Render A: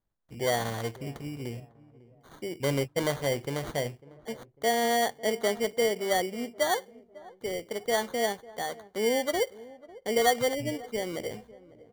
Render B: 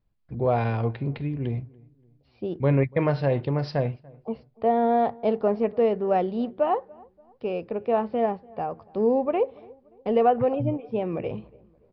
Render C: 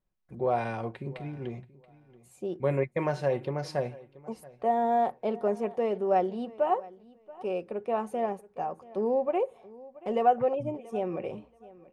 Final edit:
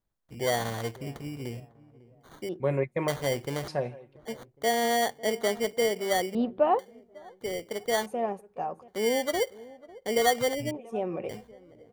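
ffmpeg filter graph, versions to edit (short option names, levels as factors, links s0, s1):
-filter_complex "[2:a]asplit=4[s0][s1][s2][s3];[0:a]asplit=6[s4][s5][s6][s7][s8][s9];[s4]atrim=end=2.492[s10];[s0]atrim=start=2.488:end=3.082[s11];[s5]atrim=start=3.078:end=3.682[s12];[s1]atrim=start=3.678:end=4.162[s13];[s6]atrim=start=4.158:end=6.352[s14];[1:a]atrim=start=6.348:end=6.792[s15];[s7]atrim=start=6.788:end=8.062[s16];[s2]atrim=start=8.058:end=8.882[s17];[s8]atrim=start=8.878:end=10.712[s18];[s3]atrim=start=10.708:end=11.292[s19];[s9]atrim=start=11.288[s20];[s10][s11]acrossfade=d=0.004:c1=hsin:c2=hsin[s21];[s21][s12]acrossfade=d=0.004:c1=hsin:c2=hsin[s22];[s22][s13]acrossfade=d=0.004:c1=hsin:c2=hsin[s23];[s23][s14]acrossfade=d=0.004:c1=hsin:c2=hsin[s24];[s24][s15]acrossfade=d=0.004:c1=hsin:c2=hsin[s25];[s25][s16]acrossfade=d=0.004:c1=hsin:c2=hsin[s26];[s26][s17]acrossfade=d=0.004:c1=hsin:c2=hsin[s27];[s27][s18]acrossfade=d=0.004:c1=hsin:c2=hsin[s28];[s28][s19]acrossfade=d=0.004:c1=hsin:c2=hsin[s29];[s29][s20]acrossfade=d=0.004:c1=hsin:c2=hsin"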